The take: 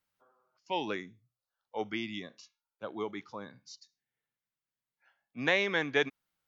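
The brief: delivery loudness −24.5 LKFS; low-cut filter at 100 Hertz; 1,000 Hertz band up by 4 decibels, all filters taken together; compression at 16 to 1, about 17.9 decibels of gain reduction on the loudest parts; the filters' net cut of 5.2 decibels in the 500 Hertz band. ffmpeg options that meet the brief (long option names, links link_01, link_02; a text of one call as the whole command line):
ffmpeg -i in.wav -af "highpass=100,equalizer=frequency=500:width_type=o:gain=-8,equalizer=frequency=1000:width_type=o:gain=7.5,acompressor=threshold=-40dB:ratio=16,volume=22.5dB" out.wav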